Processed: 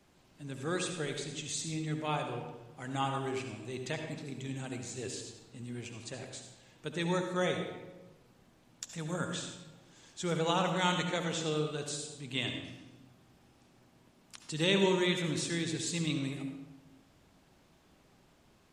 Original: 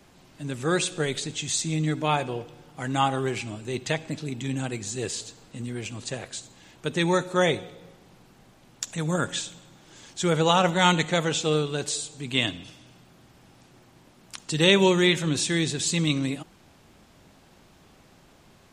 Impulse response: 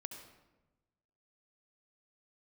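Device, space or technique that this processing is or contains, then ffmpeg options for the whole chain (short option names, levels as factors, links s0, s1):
bathroom: -filter_complex "[1:a]atrim=start_sample=2205[s0];[0:a][s0]afir=irnorm=-1:irlink=0,volume=0.501"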